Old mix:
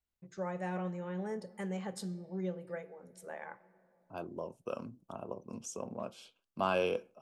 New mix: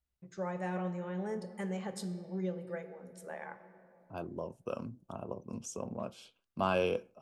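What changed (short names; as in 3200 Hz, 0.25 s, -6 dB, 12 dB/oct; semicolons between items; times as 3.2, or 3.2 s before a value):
first voice: send +8.0 dB; second voice: add low shelf 120 Hz +11.5 dB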